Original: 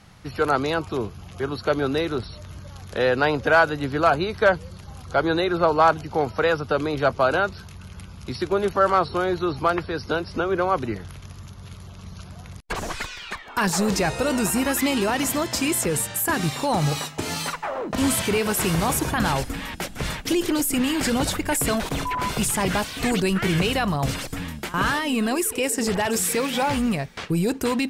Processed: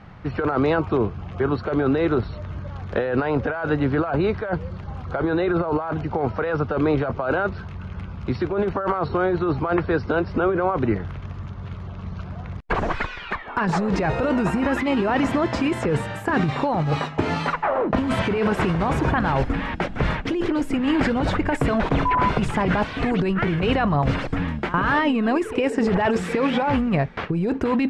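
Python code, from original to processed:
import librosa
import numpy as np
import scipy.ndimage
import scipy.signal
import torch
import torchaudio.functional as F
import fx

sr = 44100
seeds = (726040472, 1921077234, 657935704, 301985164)

y = scipy.signal.sosfilt(scipy.signal.butter(2, 1900.0, 'lowpass', fs=sr, output='sos'), x)
y = fx.over_compress(y, sr, threshold_db=-25.0, ratio=-1.0)
y = F.gain(torch.from_numpy(y), 4.5).numpy()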